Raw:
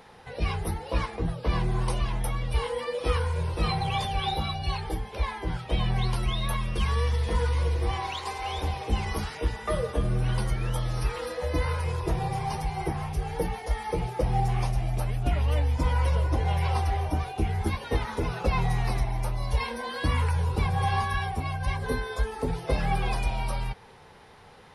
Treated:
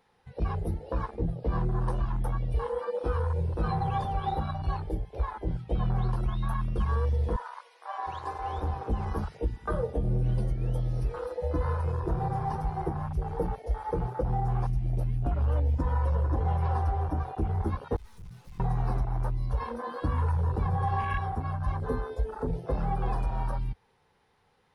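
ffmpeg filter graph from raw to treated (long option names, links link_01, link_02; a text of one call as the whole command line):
ffmpeg -i in.wav -filter_complex "[0:a]asettb=1/sr,asplit=3[link_01][link_02][link_03];[link_01]atrim=end=7.364[link_04];[link_02]atrim=start=7.36:end=8.07,asetpts=PTS-STARTPTS,afade=type=in:duration=0.004:curve=qsin,afade=type=out:start_time=0.706:duration=0.004:curve=qsin,highpass=frequency=650:width=0.5412,highpass=frequency=650:width=1.3066,highshelf=frequency=7700:gain=-4.5[link_05];[link_03]atrim=start=8.066[link_06];[link_04][link_05]acrossfade=duration=0.004:curve1=hsin:curve2=qsin[link_07];[link_07][link_06]acrossfade=duration=0.004:curve1=qsin:curve2=hsin,asettb=1/sr,asplit=3[link_08][link_09][link_10];[link_08]atrim=end=17.964[link_11];[link_09]atrim=start=17.96:end=18.6,asetpts=PTS-STARTPTS,afade=type=in:duration=0.004:curve=qsin,afade=type=out:start_time=0.636:duration=0.004:curve=qsin,bass=frequency=250:gain=2,treble=frequency=4000:gain=13,aeval=exprs='(mod(5.62*val(0)+1,2)-1)/5.62':channel_layout=same,aeval=exprs='(tanh(112*val(0)+0.55)-tanh(0.55))/112':channel_layout=same[link_12];[link_10]atrim=start=18.596[link_13];[link_11][link_12]acrossfade=duration=0.004:curve1=hsin:curve2=qsin[link_14];[link_14][link_13]acrossfade=duration=0.004:curve1=qsin:curve2=hsin,bandreject=frequency=630:width=13,afwtdn=0.0282,alimiter=limit=-19dB:level=0:latency=1:release=108" out.wav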